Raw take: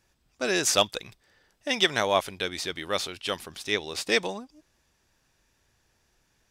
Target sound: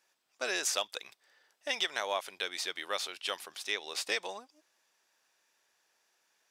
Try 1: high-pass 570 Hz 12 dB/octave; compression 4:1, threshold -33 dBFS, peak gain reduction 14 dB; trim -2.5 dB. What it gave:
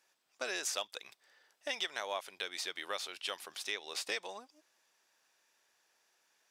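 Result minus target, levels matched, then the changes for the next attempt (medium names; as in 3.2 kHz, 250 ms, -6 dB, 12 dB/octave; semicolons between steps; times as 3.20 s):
compression: peak gain reduction +5 dB
change: compression 4:1, threshold -26.5 dBFS, peak gain reduction 9.5 dB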